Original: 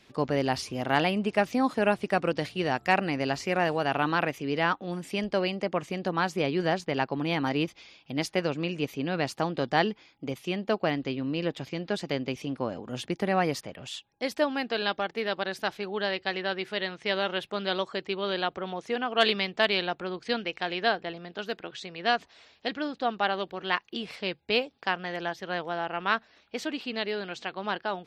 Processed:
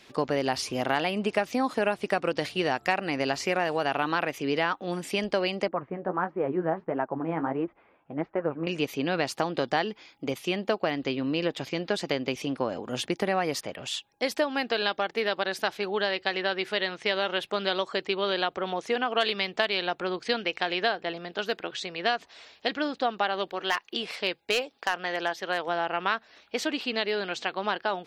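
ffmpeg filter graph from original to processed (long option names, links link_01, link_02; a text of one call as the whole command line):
ffmpeg -i in.wav -filter_complex "[0:a]asettb=1/sr,asplit=3[link_01][link_02][link_03];[link_01]atrim=end=5.684[link_04];[link_02]atrim=start=5.68:end=8.67,asetpts=PTS-STARTPTS,afade=type=in:duration=0.004:curve=qsin,afade=type=out:start_time=2.986:duration=0.004:curve=qsin,lowpass=frequency=1500:width=0.5412,lowpass=frequency=1500:width=1.3066,flanger=delay=3:depth=9.7:regen=40:speed=1.5:shape=sinusoidal[link_05];[link_03]atrim=start=8.666[link_06];[link_04][link_05]acrossfade=duration=0.004:curve1=hsin:curve2=qsin[link_07];[link_07][link_06]acrossfade=duration=0.004:curve1=qsin:curve2=hsin,asettb=1/sr,asplit=3[link_08][link_09][link_10];[link_08]atrim=end=23.494[link_11];[link_09]atrim=start=23.49:end=25.68,asetpts=PTS-STARTPTS,afade=type=in:duration=0.004:curve=qsin,afade=type=out:start_time=2.186:duration=0.004:curve=qsin,equalizer=frequency=78:width_type=o:width=2.5:gain=-10,asoftclip=type=hard:threshold=-18.5dB[link_12];[link_10]atrim=start=25.676[link_13];[link_11][link_12]acrossfade=duration=0.004:curve1=hsin:curve2=qsin[link_14];[link_14][link_13]acrossfade=duration=0.004:curve1=qsin:curve2=hsin,bass=frequency=250:gain=-7,treble=frequency=4000:gain=1,acompressor=threshold=-28dB:ratio=4,volume=5.5dB" out.wav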